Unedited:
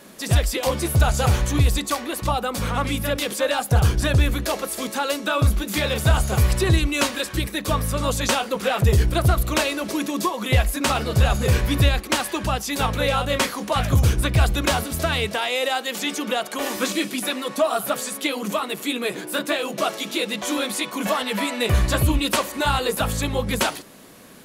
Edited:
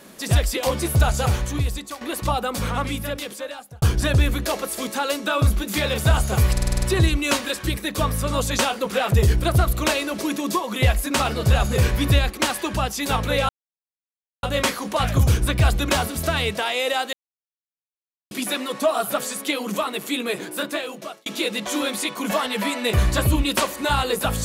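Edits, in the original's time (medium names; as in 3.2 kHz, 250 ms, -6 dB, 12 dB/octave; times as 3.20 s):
1.00–2.01 s: fade out, to -12 dB
2.63–3.82 s: fade out linear
6.52 s: stutter 0.05 s, 7 plays
13.19 s: insert silence 0.94 s
15.89–17.07 s: mute
18.96–20.02 s: fade out equal-power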